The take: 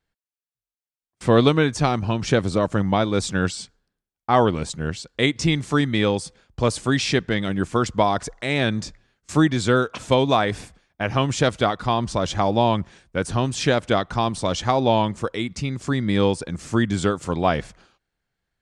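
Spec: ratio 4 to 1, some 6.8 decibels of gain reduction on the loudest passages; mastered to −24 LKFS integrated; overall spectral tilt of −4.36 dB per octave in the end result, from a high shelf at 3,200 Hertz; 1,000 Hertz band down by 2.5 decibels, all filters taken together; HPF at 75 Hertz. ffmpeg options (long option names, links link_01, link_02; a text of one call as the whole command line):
ffmpeg -i in.wav -af "highpass=75,equalizer=frequency=1000:width_type=o:gain=-4,highshelf=frequency=3200:gain=5.5,acompressor=threshold=-20dB:ratio=4,volume=2dB" out.wav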